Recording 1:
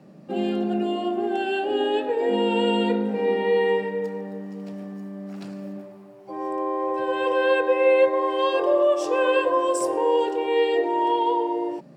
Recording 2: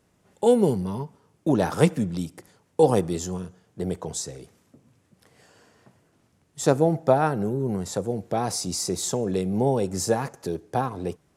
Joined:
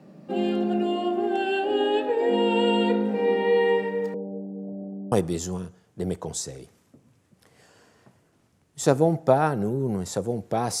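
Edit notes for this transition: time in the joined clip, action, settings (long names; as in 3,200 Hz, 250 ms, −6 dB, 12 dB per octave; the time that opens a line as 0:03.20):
recording 1
0:04.14–0:05.12: Butterworth low-pass 750 Hz 48 dB per octave
0:05.12: continue with recording 2 from 0:02.92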